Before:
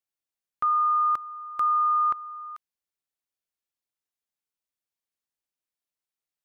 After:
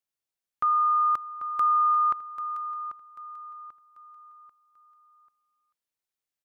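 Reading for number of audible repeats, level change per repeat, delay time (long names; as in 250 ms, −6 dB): 3, −8.5 dB, 790 ms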